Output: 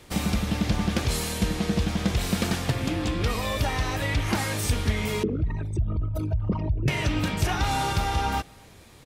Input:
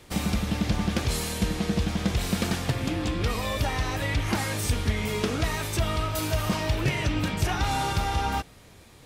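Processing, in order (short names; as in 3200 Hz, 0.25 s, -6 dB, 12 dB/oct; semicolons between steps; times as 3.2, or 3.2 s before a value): 5.23–6.88 formant sharpening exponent 3; speakerphone echo 0.26 s, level -29 dB; gain +1 dB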